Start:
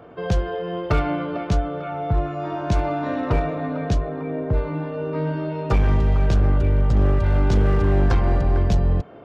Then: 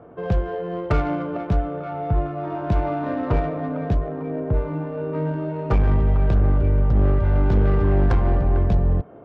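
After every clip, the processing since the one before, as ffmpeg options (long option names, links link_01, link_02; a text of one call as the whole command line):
ffmpeg -i in.wav -af "adynamicsmooth=sensitivity=1:basefreq=1500" out.wav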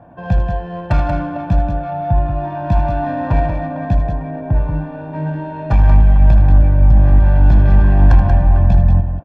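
ffmpeg -i in.wav -filter_complex "[0:a]aecho=1:1:1.2:0.92,asplit=2[link_01][link_02];[link_02]aecho=0:1:78.72|183.7:0.282|0.447[link_03];[link_01][link_03]amix=inputs=2:normalize=0,volume=1dB" out.wav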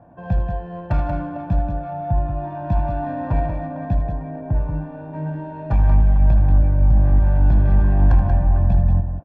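ffmpeg -i in.wav -af "highshelf=frequency=2100:gain=-9,volume=-5dB" out.wav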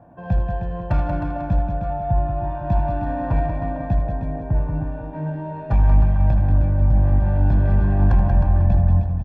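ffmpeg -i in.wav -af "aecho=1:1:311:0.376" out.wav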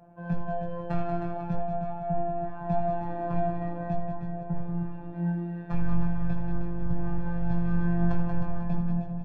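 ffmpeg -i in.wav -af "flanger=delay=17.5:depth=2.3:speed=0.44,afftfilt=real='hypot(re,im)*cos(PI*b)':imag='0':win_size=1024:overlap=0.75" out.wav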